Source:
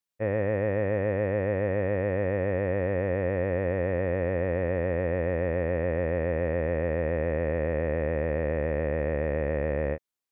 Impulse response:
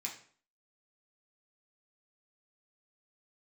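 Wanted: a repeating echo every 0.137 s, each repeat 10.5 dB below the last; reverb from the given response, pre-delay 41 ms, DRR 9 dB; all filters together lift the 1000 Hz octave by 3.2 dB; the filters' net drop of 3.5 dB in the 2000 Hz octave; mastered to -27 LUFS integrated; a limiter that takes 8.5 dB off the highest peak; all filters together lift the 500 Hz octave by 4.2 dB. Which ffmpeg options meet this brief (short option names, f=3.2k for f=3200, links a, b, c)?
-filter_complex "[0:a]equalizer=f=500:t=o:g=4,equalizer=f=1k:t=o:g=3.5,equalizer=f=2k:t=o:g=-5,alimiter=limit=-22.5dB:level=0:latency=1,aecho=1:1:137|274|411:0.299|0.0896|0.0269,asplit=2[a][b];[1:a]atrim=start_sample=2205,adelay=41[c];[b][c]afir=irnorm=-1:irlink=0,volume=-8.5dB[d];[a][d]amix=inputs=2:normalize=0,volume=4dB"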